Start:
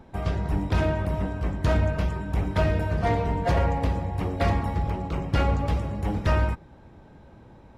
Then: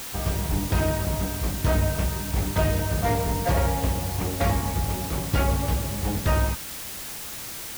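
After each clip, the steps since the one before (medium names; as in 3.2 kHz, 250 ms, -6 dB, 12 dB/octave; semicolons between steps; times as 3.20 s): added noise white -36 dBFS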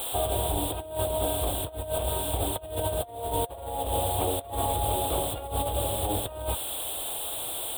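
FFT filter 110 Hz 0 dB, 190 Hz -11 dB, 300 Hz +3 dB, 480 Hz +9 dB, 690 Hz +14 dB, 2 kHz -9 dB, 3.5 kHz +13 dB, 5.8 kHz -29 dB, 8.3 kHz +10 dB, 15 kHz +5 dB; compressor with a negative ratio -22 dBFS, ratio -0.5; trim -6.5 dB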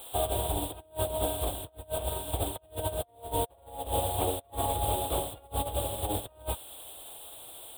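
upward expansion 2.5:1, over -37 dBFS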